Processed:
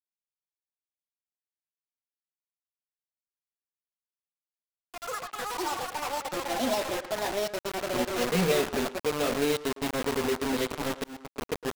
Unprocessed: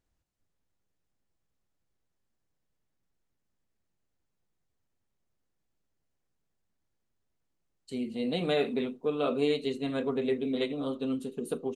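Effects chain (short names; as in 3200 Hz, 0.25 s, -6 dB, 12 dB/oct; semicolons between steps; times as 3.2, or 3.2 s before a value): Wiener smoothing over 9 samples; 8.12–8.52 ripple EQ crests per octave 0.81, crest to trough 17 dB; bit-crush 5-bit; echoes that change speed 0.711 s, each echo +6 st, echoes 3; speakerphone echo 0.11 s, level -8 dB; 11.04–11.45 fade in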